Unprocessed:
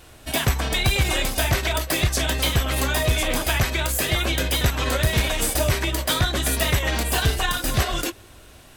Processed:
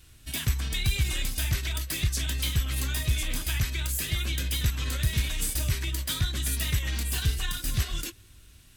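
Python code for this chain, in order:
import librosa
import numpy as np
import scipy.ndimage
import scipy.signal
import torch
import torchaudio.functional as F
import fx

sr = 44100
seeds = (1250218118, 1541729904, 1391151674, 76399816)

y = fx.tone_stack(x, sr, knobs='6-0-2')
y = F.gain(torch.from_numpy(y), 8.5).numpy()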